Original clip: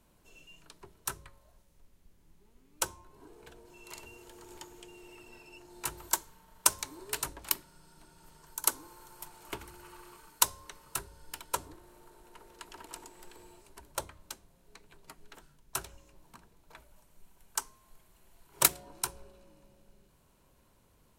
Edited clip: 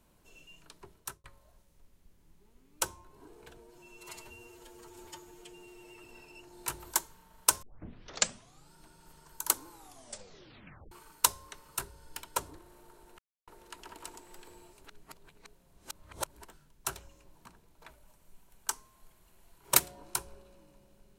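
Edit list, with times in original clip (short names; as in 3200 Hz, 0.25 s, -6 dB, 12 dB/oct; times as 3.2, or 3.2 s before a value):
0.93–1.24 fade out
3.57–5.22 stretch 1.5×
6.8 tape start 1.10 s
8.86 tape stop 1.23 s
12.36 insert silence 0.29 s
13.73–15.37 reverse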